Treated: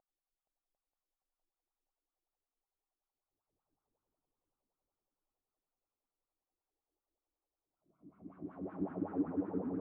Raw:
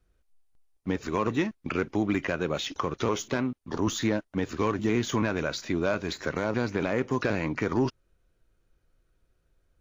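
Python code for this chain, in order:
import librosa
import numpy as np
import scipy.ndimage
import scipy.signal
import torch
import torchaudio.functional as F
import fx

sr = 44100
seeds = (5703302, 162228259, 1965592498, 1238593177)

p1 = fx.wiener(x, sr, points=25)
p2 = fx.env_lowpass_down(p1, sr, base_hz=390.0, full_db=-25.5)
p3 = fx.peak_eq(p2, sr, hz=320.0, db=-8.5, octaves=2.3)
p4 = fx.fold_sine(p3, sr, drive_db=10, ceiling_db=-19.0)
p5 = p3 + F.gain(torch.from_numpy(p4), -11.0).numpy()
p6 = fx.paulstretch(p5, sr, seeds[0], factor=15.0, window_s=0.1, from_s=0.3)
p7 = fx.wah_lfo(p6, sr, hz=5.3, low_hz=290.0, high_hz=1500.0, q=4.5)
p8 = p7 + fx.echo_single(p7, sr, ms=748, db=-6.5, dry=0)
p9 = fx.echo_warbled(p8, sr, ms=466, feedback_pct=77, rate_hz=2.8, cents=197, wet_db=-7.5)
y = F.gain(torch.from_numpy(p9), 2.5).numpy()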